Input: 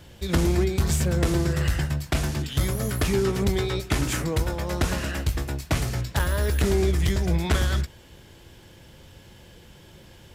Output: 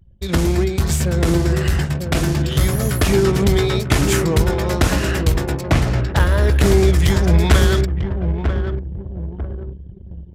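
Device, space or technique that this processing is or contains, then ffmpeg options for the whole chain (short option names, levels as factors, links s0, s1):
voice memo with heavy noise removal: -filter_complex "[0:a]asplit=3[s0][s1][s2];[s0]afade=t=out:st=5.6:d=0.02[s3];[s1]aemphasis=mode=reproduction:type=cd,afade=t=in:st=5.6:d=0.02,afade=t=out:st=6.6:d=0.02[s4];[s2]afade=t=in:st=6.6:d=0.02[s5];[s3][s4][s5]amix=inputs=3:normalize=0,asplit=2[s6][s7];[s7]adelay=944,lowpass=f=1200:p=1,volume=0.501,asplit=2[s8][s9];[s9]adelay=944,lowpass=f=1200:p=1,volume=0.43,asplit=2[s10][s11];[s11]adelay=944,lowpass=f=1200:p=1,volume=0.43,asplit=2[s12][s13];[s13]adelay=944,lowpass=f=1200:p=1,volume=0.43,asplit=2[s14][s15];[s15]adelay=944,lowpass=f=1200:p=1,volume=0.43[s16];[s6][s8][s10][s12][s14][s16]amix=inputs=6:normalize=0,anlmdn=1,dynaudnorm=f=380:g=13:m=1.5,volume=1.68"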